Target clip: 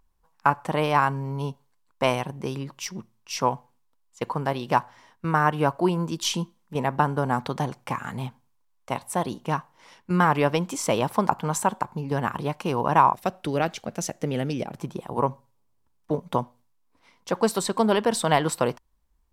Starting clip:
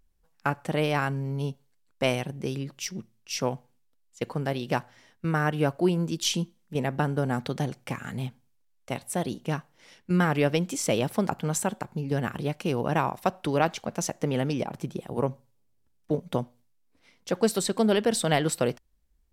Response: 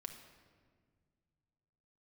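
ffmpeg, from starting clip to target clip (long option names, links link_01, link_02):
-af "asetnsamples=nb_out_samples=441:pad=0,asendcmd='13.14 equalizer g -3.5;14.79 equalizer g 12.5',equalizer=frequency=1000:width=2.2:gain=14"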